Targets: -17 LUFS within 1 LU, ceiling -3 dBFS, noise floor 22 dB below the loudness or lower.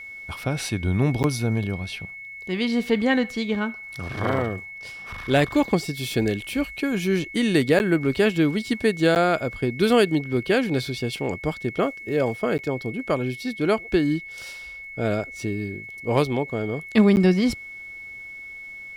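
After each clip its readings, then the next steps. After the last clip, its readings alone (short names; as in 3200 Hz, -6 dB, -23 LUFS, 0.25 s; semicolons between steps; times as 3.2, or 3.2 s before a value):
dropouts 5; longest dropout 9.7 ms; steady tone 2200 Hz; tone level -36 dBFS; loudness -23.5 LUFS; peak -6.5 dBFS; loudness target -17.0 LUFS
-> interpolate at 1.23/7.79/9.15/12.58/17.16, 9.7 ms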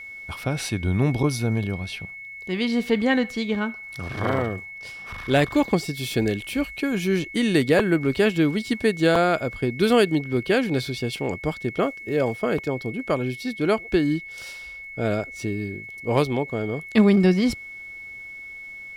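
dropouts 0; steady tone 2200 Hz; tone level -36 dBFS
-> notch 2200 Hz, Q 30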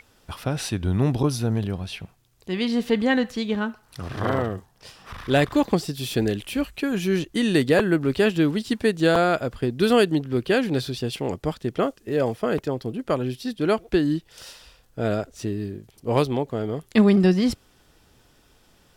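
steady tone none; loudness -23.5 LUFS; peak -6.5 dBFS; loudness target -17.0 LUFS
-> gain +6.5 dB; limiter -3 dBFS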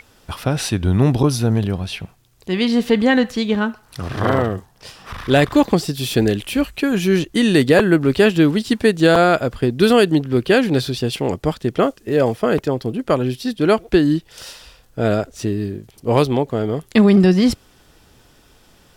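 loudness -17.5 LUFS; peak -3.0 dBFS; noise floor -53 dBFS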